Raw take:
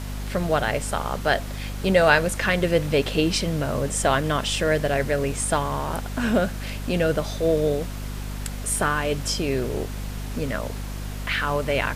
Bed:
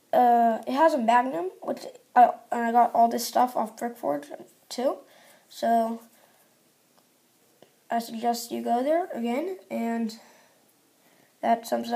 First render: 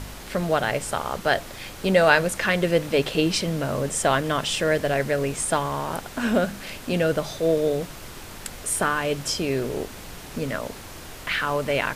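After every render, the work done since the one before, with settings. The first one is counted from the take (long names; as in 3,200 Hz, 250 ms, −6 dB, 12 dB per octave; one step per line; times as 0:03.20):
hum removal 50 Hz, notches 5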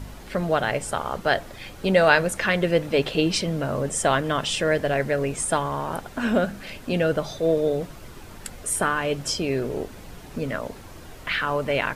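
broadband denoise 8 dB, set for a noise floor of −40 dBFS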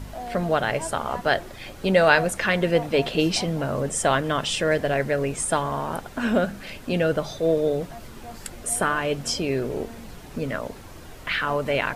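mix in bed −16 dB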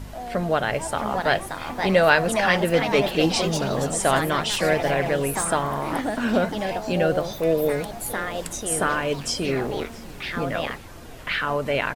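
single-tap delay 665 ms −22.5 dB
delay with pitch and tempo change per echo 726 ms, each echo +3 semitones, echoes 3, each echo −6 dB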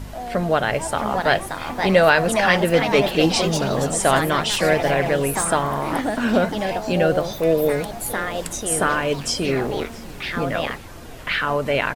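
level +3 dB
brickwall limiter −2 dBFS, peak gain reduction 2.5 dB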